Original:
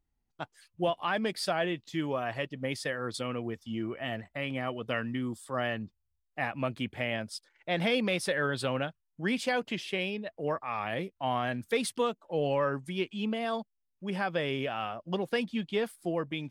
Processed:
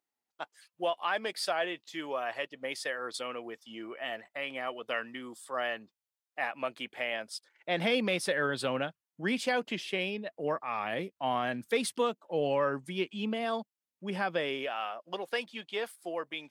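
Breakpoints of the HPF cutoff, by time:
7.19 s 470 Hz
7.85 s 180 Hz
14.25 s 180 Hz
14.77 s 530 Hz

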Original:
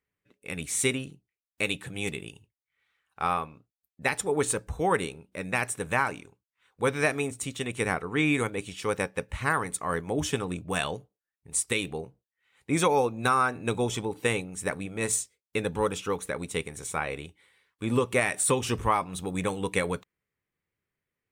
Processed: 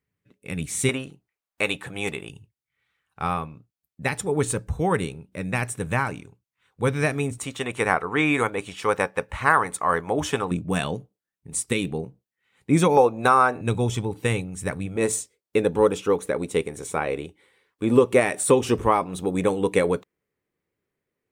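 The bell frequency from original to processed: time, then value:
bell +10 dB 2.2 oct
130 Hz
from 0.89 s 940 Hz
from 2.29 s 120 Hz
from 7.38 s 970 Hz
from 10.51 s 190 Hz
from 12.97 s 650 Hz
from 13.61 s 100 Hz
from 14.96 s 390 Hz

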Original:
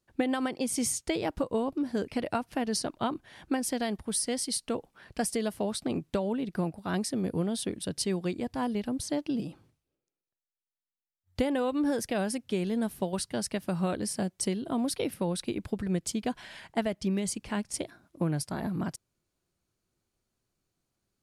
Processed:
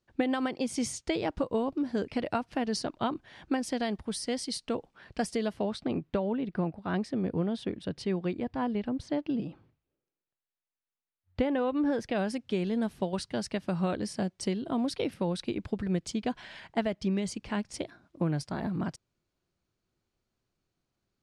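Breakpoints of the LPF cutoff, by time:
5.25 s 5800 Hz
6.05 s 2900 Hz
11.85 s 2900 Hz
12.35 s 5400 Hz

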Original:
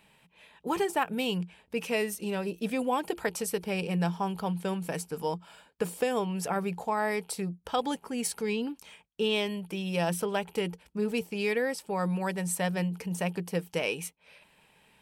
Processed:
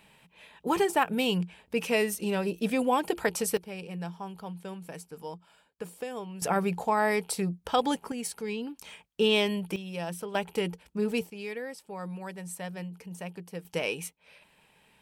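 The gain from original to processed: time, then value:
+3 dB
from 3.57 s -8.5 dB
from 6.42 s +3.5 dB
from 8.12 s -3.5 dB
from 8.79 s +4 dB
from 9.76 s -6.5 dB
from 10.35 s +1 dB
from 11.3 s -8.5 dB
from 13.65 s -0.5 dB

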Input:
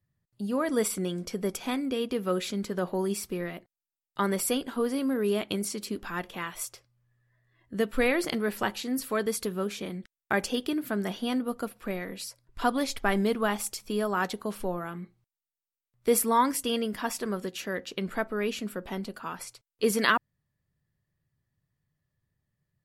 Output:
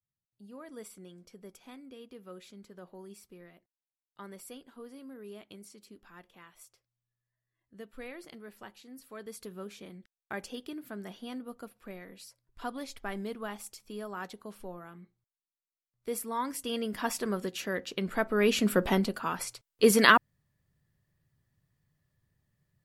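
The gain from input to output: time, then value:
9 s -19 dB
9.52 s -11.5 dB
16.29 s -11.5 dB
17.05 s -0.5 dB
18.13 s -0.5 dB
18.81 s +11 dB
19.19 s +4 dB

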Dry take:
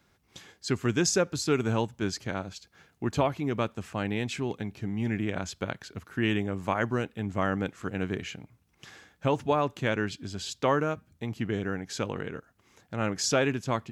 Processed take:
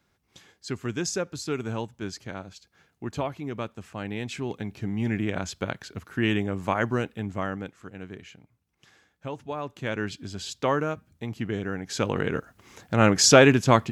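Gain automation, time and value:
3.93 s -4 dB
4.83 s +2.5 dB
7.11 s +2.5 dB
7.89 s -9 dB
9.47 s -9 dB
10.08 s +0.5 dB
11.72 s +0.5 dB
12.36 s +10.5 dB

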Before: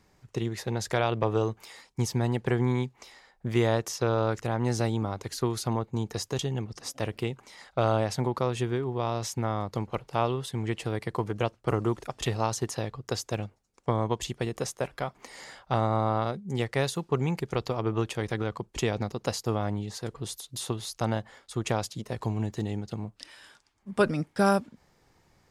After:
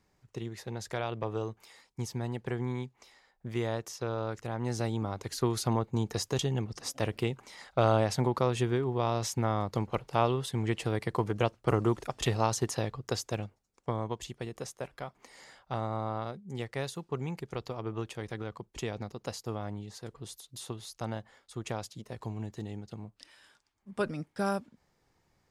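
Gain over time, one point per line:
4.31 s -8 dB
5.58 s 0 dB
12.88 s 0 dB
14.26 s -8 dB

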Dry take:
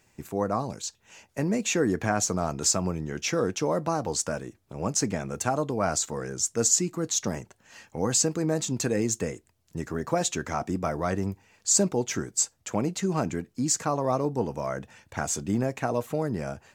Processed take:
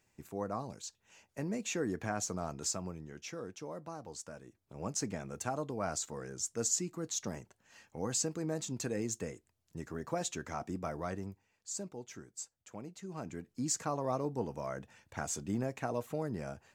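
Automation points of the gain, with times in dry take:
2.52 s -10.5 dB
3.43 s -17.5 dB
4.34 s -17.5 dB
4.77 s -10 dB
11.02 s -10 dB
11.68 s -19 dB
13.01 s -19 dB
13.57 s -8.5 dB

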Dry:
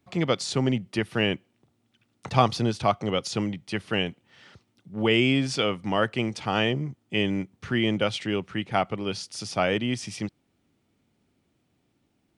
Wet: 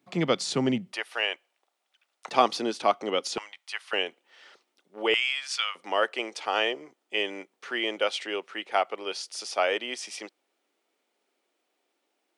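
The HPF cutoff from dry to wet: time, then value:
HPF 24 dB/oct
160 Hz
from 0.93 s 590 Hz
from 2.28 s 280 Hz
from 3.38 s 880 Hz
from 3.93 s 390 Hz
from 5.14 s 1100 Hz
from 5.75 s 410 Hz

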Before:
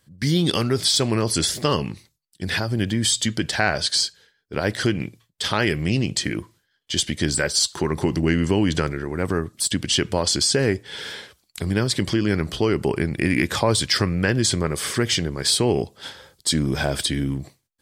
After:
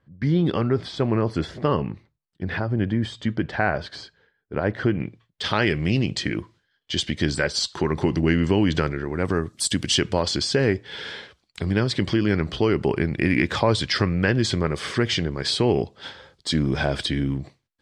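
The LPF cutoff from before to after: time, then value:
4.89 s 1600 Hz
5.49 s 4300 Hz
9.09 s 4300 Hz
9.77 s 11000 Hz
10.29 s 4100 Hz

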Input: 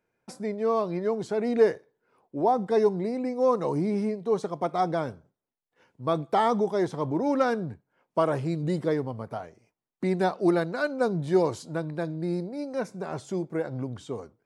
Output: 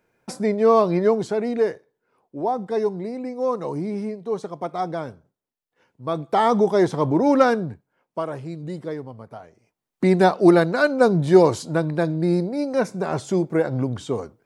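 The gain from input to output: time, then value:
1.06 s +9.5 dB
1.63 s -0.5 dB
6.04 s -0.5 dB
6.67 s +8 dB
7.42 s +8 dB
8.27 s -4 dB
9.41 s -4 dB
10.05 s +9 dB

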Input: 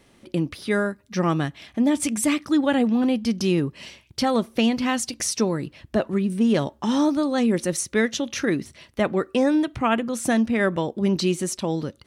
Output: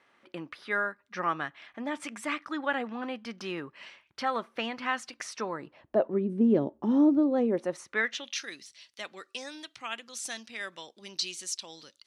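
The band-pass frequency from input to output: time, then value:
band-pass, Q 1.4
5.38 s 1400 Hz
6.41 s 340 Hz
7.24 s 340 Hz
8.13 s 1900 Hz
8.44 s 4900 Hz

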